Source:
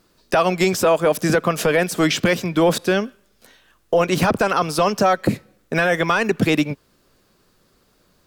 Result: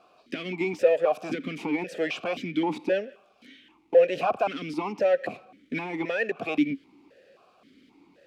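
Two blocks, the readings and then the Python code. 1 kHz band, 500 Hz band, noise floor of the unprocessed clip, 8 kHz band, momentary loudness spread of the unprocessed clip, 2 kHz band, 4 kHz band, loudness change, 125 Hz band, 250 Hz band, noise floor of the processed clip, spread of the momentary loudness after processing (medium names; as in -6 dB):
-11.0 dB, -6.0 dB, -61 dBFS, under -20 dB, 5 LU, -11.0 dB, -13.5 dB, -8.0 dB, -17.5 dB, -9.0 dB, -62 dBFS, 13 LU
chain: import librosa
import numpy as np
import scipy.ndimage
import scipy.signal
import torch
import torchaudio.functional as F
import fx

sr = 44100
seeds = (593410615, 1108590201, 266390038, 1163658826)

y = fx.power_curve(x, sr, exponent=0.7)
y = fx.vowel_held(y, sr, hz=3.8)
y = F.gain(torch.from_numpy(y), 1.0).numpy()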